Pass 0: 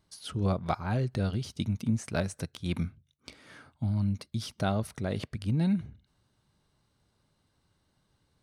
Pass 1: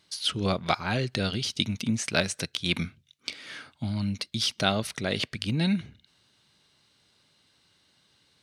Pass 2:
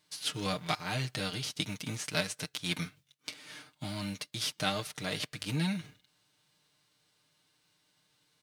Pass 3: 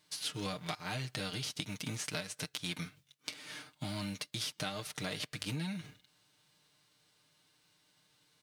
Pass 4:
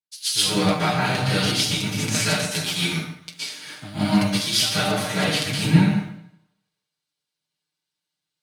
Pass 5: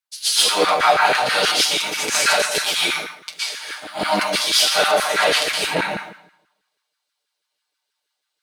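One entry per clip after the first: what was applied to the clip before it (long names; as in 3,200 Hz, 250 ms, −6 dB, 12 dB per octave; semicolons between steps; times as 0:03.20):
meter weighting curve D; level +4 dB
spectral envelope flattened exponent 0.6; comb filter 6.6 ms, depth 74%; level −8.5 dB
downward compressor 10 to 1, threshold −36 dBFS, peak gain reduction 12 dB; level +1.5 dB
dense smooth reverb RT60 1.2 s, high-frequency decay 0.7×, pre-delay 105 ms, DRR −9.5 dB; multiband upward and downward expander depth 100%; level +8 dB
soft clipping −10.5 dBFS, distortion −18 dB; auto-filter high-pass saw down 6.2 Hz 400–1,600 Hz; level +5 dB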